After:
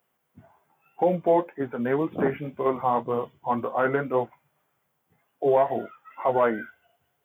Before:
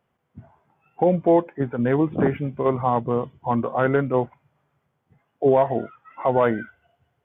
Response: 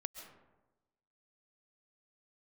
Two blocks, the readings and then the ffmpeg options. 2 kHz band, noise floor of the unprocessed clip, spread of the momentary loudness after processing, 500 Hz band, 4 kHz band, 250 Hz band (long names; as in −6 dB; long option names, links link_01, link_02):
−1.5 dB, −74 dBFS, 10 LU, −3.0 dB, can't be measured, −6.0 dB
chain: -filter_complex "[0:a]flanger=delay=9.5:depth=4.2:regen=-43:speed=1.9:shape=triangular,acrossover=split=2600[link_01][link_02];[link_02]acompressor=threshold=-59dB:ratio=4:attack=1:release=60[link_03];[link_01][link_03]amix=inputs=2:normalize=0,aemphasis=mode=production:type=bsi,volume=2.5dB"